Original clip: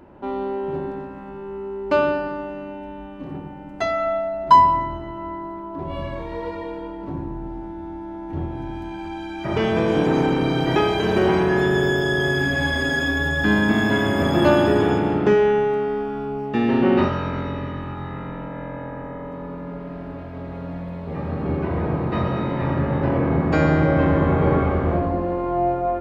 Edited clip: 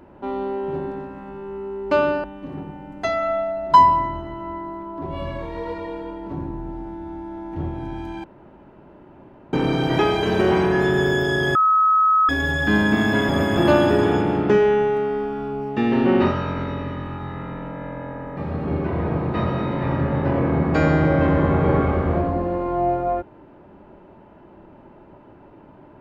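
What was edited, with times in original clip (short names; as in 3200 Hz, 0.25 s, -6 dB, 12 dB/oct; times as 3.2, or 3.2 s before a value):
2.24–3.01 cut
9.01–10.3 room tone
12.32–13.06 bleep 1280 Hz -13 dBFS
14.06–14.34 reverse
19.14–21.15 cut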